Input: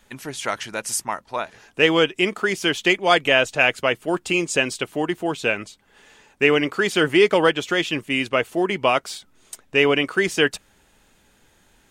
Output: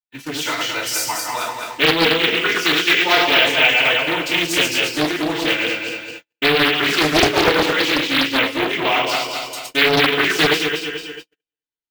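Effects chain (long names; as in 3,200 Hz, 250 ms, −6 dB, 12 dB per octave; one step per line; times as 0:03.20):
feedback delay that plays each chunk backwards 109 ms, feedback 65%, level −2.5 dB
feedback delay network reverb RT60 0.3 s, low-frequency decay 0.9×, high-frequency decay 0.95×, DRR −9.5 dB
noise gate −26 dBFS, range −51 dB
parametric band 3,800 Hz +11 dB 1.9 octaves
bad sample-rate conversion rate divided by 2×, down none, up hold
in parallel at 0 dB: downward compressor, threshold −14 dBFS, peak gain reduction 17.5 dB
on the sum: highs frequency-modulated by the lows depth 0.79 ms
level −15 dB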